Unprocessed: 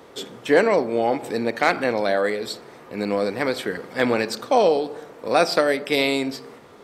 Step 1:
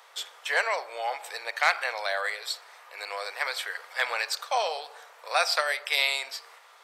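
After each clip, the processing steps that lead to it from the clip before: Bessel high-pass 1100 Hz, order 6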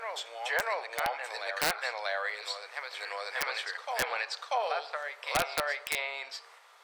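treble ducked by the level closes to 1700 Hz, closed at -21 dBFS; reverse echo 0.639 s -5.5 dB; wrapped overs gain 15 dB; gain -3.5 dB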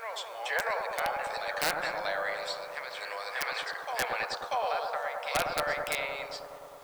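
in parallel at -11 dB: requantised 8-bit, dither triangular; on the sum: analogue delay 0.104 s, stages 1024, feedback 82%, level -5 dB; gain -3 dB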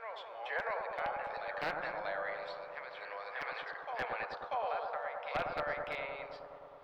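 air absorption 350 m; gain -4 dB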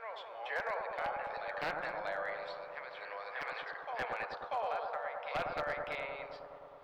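overloaded stage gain 28.5 dB

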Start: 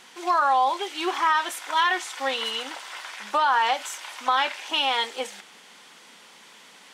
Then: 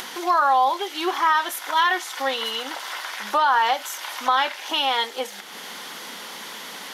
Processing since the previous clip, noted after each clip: thirty-one-band EQ 125 Hz -11 dB, 2500 Hz -5 dB, 8000 Hz -7 dB, 12500 Hz +10 dB; upward compressor, threshold -27 dBFS; gain +2.5 dB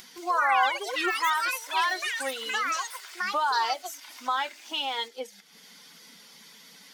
per-bin expansion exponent 1.5; echoes that change speed 0.176 s, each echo +6 st, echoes 3; gain -5.5 dB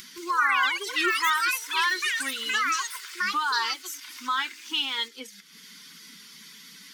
Butterworth band-stop 650 Hz, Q 0.86; gain +4 dB

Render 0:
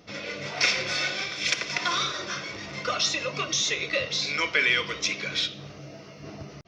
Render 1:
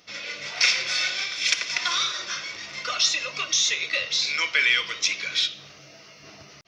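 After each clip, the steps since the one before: tilt shelf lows -8.5 dB, about 930 Hz; gain -3.5 dB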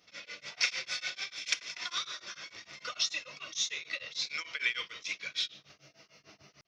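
tremolo triangle 6.7 Hz, depth 100%; gain -7 dB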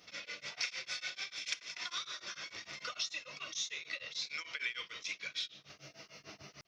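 compressor 2:1, threshold -51 dBFS, peak gain reduction 15 dB; gain +5.5 dB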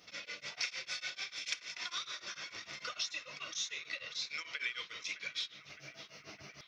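narrowing echo 0.613 s, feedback 70%, band-pass 1600 Hz, level -13.5 dB

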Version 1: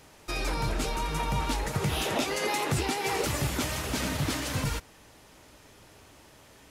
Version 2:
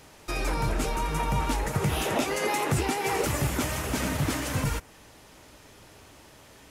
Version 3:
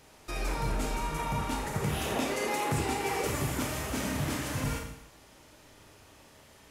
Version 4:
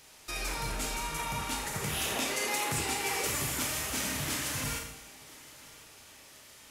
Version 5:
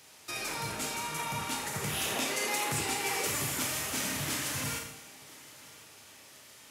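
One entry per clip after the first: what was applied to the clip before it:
dynamic EQ 4100 Hz, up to -6 dB, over -49 dBFS, Q 1.3; gain +2.5 dB
Schroeder reverb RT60 0.76 s, combs from 27 ms, DRR 2 dB; gain -6 dB
tilt shelf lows -6.5 dB, about 1500 Hz; thinning echo 1.015 s, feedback 55%, high-pass 170 Hz, level -21.5 dB
HPF 85 Hz 24 dB/oct

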